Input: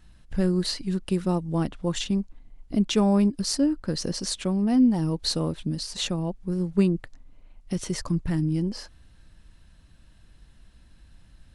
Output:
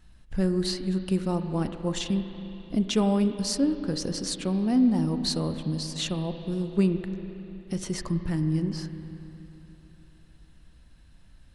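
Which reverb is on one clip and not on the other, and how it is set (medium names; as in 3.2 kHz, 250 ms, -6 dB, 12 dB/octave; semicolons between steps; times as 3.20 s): spring tank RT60 3.4 s, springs 32/36/47 ms, chirp 50 ms, DRR 8 dB; trim -2 dB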